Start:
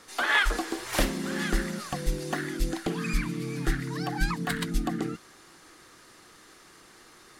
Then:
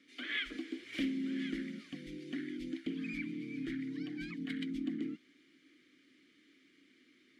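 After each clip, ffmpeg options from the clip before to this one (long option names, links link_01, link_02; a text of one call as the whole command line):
ffmpeg -i in.wav -filter_complex "[0:a]asplit=3[link_01][link_02][link_03];[link_01]bandpass=frequency=270:width_type=q:width=8,volume=0dB[link_04];[link_02]bandpass=frequency=2290:width_type=q:width=8,volume=-6dB[link_05];[link_03]bandpass=frequency=3010:width_type=q:width=8,volume=-9dB[link_06];[link_04][link_05][link_06]amix=inputs=3:normalize=0,volume=1.5dB" out.wav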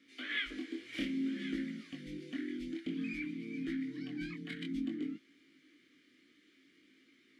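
ffmpeg -i in.wav -af "flanger=delay=18:depth=6.6:speed=0.56,volume=3dB" out.wav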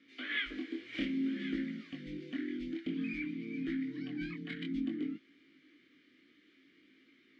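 ffmpeg -i in.wav -af "lowpass=4000,volume=1.5dB" out.wav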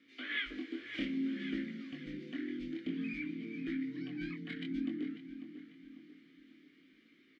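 ffmpeg -i in.wav -filter_complex "[0:a]asplit=2[link_01][link_02];[link_02]adelay=545,lowpass=frequency=3500:poles=1,volume=-11dB,asplit=2[link_03][link_04];[link_04]adelay=545,lowpass=frequency=3500:poles=1,volume=0.45,asplit=2[link_05][link_06];[link_06]adelay=545,lowpass=frequency=3500:poles=1,volume=0.45,asplit=2[link_07][link_08];[link_08]adelay=545,lowpass=frequency=3500:poles=1,volume=0.45,asplit=2[link_09][link_10];[link_10]adelay=545,lowpass=frequency=3500:poles=1,volume=0.45[link_11];[link_01][link_03][link_05][link_07][link_09][link_11]amix=inputs=6:normalize=0,volume=-1.5dB" out.wav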